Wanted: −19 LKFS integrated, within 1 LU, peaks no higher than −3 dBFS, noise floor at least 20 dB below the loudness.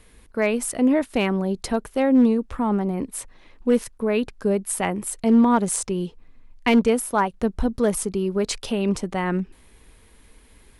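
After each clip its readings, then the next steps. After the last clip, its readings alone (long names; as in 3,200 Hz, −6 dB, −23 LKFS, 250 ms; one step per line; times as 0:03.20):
share of clipped samples 0.3%; peaks flattened at −10.5 dBFS; integrated loudness −22.5 LKFS; sample peak −10.5 dBFS; target loudness −19.0 LKFS
→ clipped peaks rebuilt −10.5 dBFS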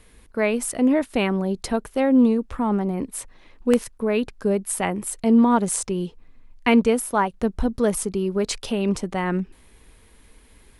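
share of clipped samples 0.0%; integrated loudness −22.5 LKFS; sample peak −1.5 dBFS; target loudness −19.0 LKFS
→ level +3.5 dB
brickwall limiter −3 dBFS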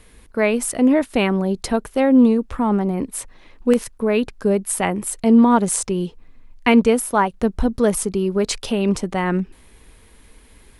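integrated loudness −19.0 LKFS; sample peak −3.0 dBFS; background noise floor −49 dBFS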